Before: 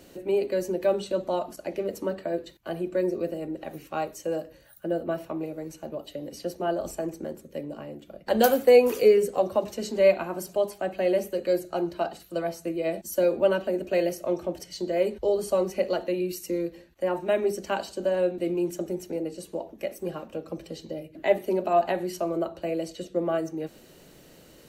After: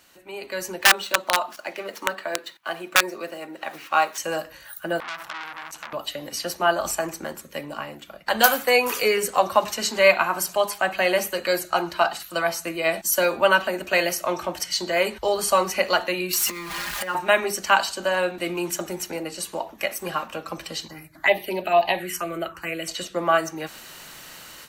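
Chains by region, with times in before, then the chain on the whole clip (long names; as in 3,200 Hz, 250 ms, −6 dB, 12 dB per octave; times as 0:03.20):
0:00.81–0:04.18: running median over 5 samples + high-pass filter 250 Hz + wrap-around overflow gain 18 dB
0:05.00–0:05.93: downward compressor 3 to 1, threshold −40 dBFS + saturating transformer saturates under 3,400 Hz
0:16.33–0:17.15: converter with a step at zero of −38.5 dBFS + comb filter 4.9 ms, depth 85% + downward compressor 10 to 1, threshold −32 dBFS
0:20.88–0:22.88: parametric band 230 Hz −6.5 dB 0.27 octaves + phaser swept by the level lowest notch 400 Hz, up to 1,400 Hz, full sweep at −21 dBFS
whole clip: low shelf with overshoot 710 Hz −13.5 dB, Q 1.5; automatic gain control gain up to 14.5 dB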